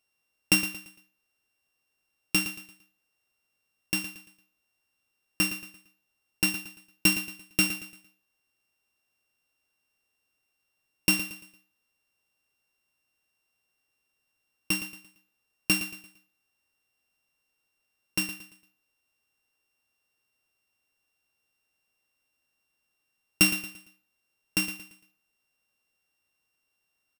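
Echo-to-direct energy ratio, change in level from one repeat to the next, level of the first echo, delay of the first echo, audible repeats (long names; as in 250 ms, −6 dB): −11.0 dB, −9.0 dB, −11.5 dB, 114 ms, 3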